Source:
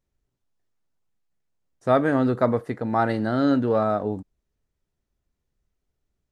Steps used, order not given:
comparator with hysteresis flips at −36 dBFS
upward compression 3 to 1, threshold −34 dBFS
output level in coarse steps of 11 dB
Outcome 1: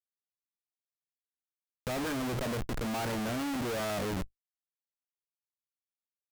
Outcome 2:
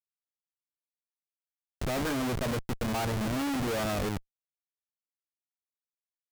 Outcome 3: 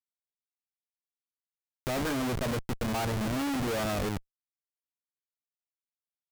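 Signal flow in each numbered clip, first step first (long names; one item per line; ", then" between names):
comparator with hysteresis, then upward compression, then output level in coarse steps
upward compression, then output level in coarse steps, then comparator with hysteresis
output level in coarse steps, then comparator with hysteresis, then upward compression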